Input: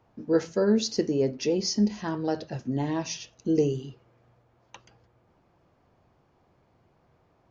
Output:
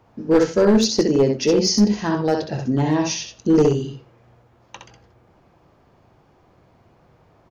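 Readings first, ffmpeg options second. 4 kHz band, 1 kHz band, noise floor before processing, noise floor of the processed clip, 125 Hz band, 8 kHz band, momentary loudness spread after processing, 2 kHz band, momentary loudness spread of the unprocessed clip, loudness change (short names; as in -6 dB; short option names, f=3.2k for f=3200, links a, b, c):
+9.0 dB, +10.0 dB, -66 dBFS, -57 dBFS, +9.0 dB, n/a, 8 LU, +9.5 dB, 9 LU, +8.5 dB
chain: -filter_complex "[0:a]asplit=2[a][b];[b]aecho=0:1:19|65:0.141|0.596[c];[a][c]amix=inputs=2:normalize=0,aeval=exprs='clip(val(0),-1,0.112)':c=same,asplit=2[d][e];[e]aecho=0:1:87:0.0891[f];[d][f]amix=inputs=2:normalize=0,volume=8dB"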